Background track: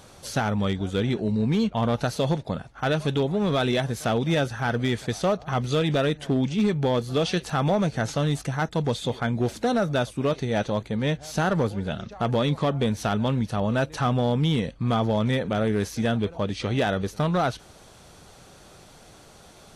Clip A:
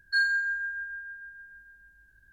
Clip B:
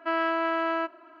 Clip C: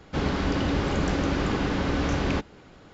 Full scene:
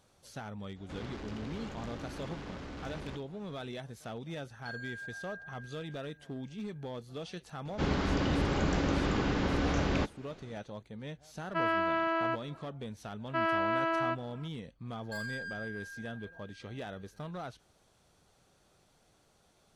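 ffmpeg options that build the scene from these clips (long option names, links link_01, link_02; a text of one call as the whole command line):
ffmpeg -i bed.wav -i cue0.wav -i cue1.wav -i cue2.wav -filter_complex "[3:a]asplit=2[link_01][link_02];[1:a]asplit=2[link_03][link_04];[2:a]asplit=2[link_05][link_06];[0:a]volume=-18dB[link_07];[link_01]asoftclip=type=tanh:threshold=-28.5dB[link_08];[link_03]alimiter=level_in=3.5dB:limit=-24dB:level=0:latency=1:release=468,volume=-3.5dB[link_09];[link_04]aeval=exprs='(tanh(35.5*val(0)+0.1)-tanh(0.1))/35.5':channel_layout=same[link_10];[link_08]atrim=end=2.93,asetpts=PTS-STARTPTS,volume=-12dB,afade=type=in:duration=0.004:curve=hsin,afade=type=out:start_time=2.926:duration=0.004:curve=hsin,adelay=760[link_11];[link_09]atrim=end=2.32,asetpts=PTS-STARTPTS,volume=-10.5dB,afade=type=in:duration=0.004:curve=hsin,afade=type=out:start_time=2.316:duration=0.004:curve=hsin,adelay=199773S[link_12];[link_02]atrim=end=2.93,asetpts=PTS-STARTPTS,volume=-4.5dB,afade=type=in:duration=0.004:curve=hsin,afade=type=out:start_time=2.926:duration=0.004:curve=hsin,adelay=7650[link_13];[link_05]atrim=end=1.2,asetpts=PTS-STARTPTS,volume=-3.5dB,afade=type=in:duration=0.004:curve=hsin,afade=type=out:start_time=1.196:duration=0.004:curve=hsin,adelay=11490[link_14];[link_06]atrim=end=1.2,asetpts=PTS-STARTPTS,volume=-3.5dB,afade=type=in:duration=0.004:curve=hsin,afade=type=out:start_time=1.196:duration=0.004:curve=hsin,adelay=13280[link_15];[link_10]atrim=end=2.32,asetpts=PTS-STARTPTS,volume=-8dB,afade=type=in:duration=0.004:curve=hsin,afade=type=out:start_time=2.316:duration=0.004:curve=hsin,adelay=14990[link_16];[link_07][link_11][link_12][link_13][link_14][link_15][link_16]amix=inputs=7:normalize=0" out.wav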